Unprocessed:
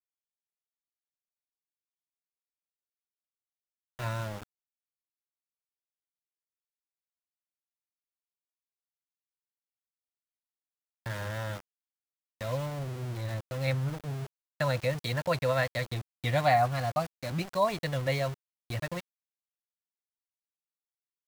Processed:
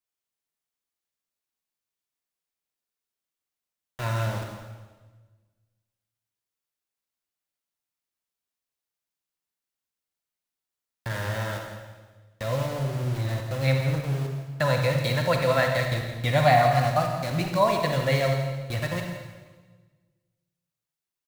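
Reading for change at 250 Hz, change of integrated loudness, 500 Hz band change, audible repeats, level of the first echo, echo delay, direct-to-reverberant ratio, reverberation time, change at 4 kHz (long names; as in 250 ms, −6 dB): +7.0 dB, +6.5 dB, +6.5 dB, 1, −13.0 dB, 167 ms, 2.5 dB, 1.4 s, +6.5 dB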